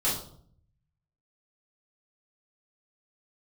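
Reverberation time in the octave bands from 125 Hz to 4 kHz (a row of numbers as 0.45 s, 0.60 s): 1.2 s, 0.85 s, 0.65 s, 0.55 s, 0.40 s, 0.40 s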